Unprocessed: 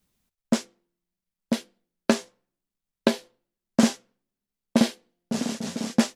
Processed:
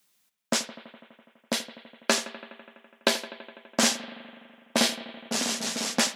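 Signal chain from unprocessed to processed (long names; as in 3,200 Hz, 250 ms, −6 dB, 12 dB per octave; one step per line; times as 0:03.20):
high-pass filter 1,400 Hz 6 dB per octave
in parallel at 0 dB: brickwall limiter −20.5 dBFS, peak gain reduction 10 dB
on the sum: bucket-brigade delay 83 ms, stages 2,048, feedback 78%, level −15 dB
level +2.5 dB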